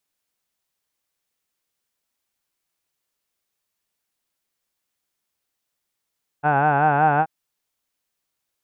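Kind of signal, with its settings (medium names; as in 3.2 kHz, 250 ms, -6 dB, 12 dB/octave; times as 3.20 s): formant vowel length 0.83 s, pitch 143 Hz, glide +1 st, F1 790 Hz, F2 1.5 kHz, F3 2.6 kHz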